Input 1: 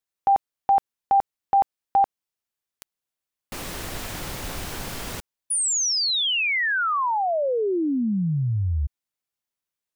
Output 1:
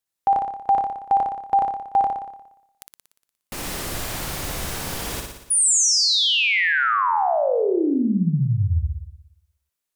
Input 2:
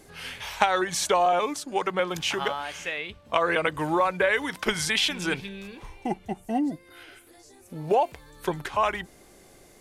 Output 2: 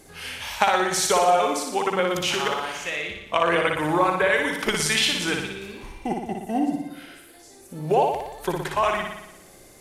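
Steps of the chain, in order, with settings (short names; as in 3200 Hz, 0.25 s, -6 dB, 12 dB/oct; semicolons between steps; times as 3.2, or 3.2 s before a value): bell 11000 Hz +3.5 dB 1.5 oct; on a send: flutter echo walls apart 10.1 m, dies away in 0.86 s; on the sum: gain +1 dB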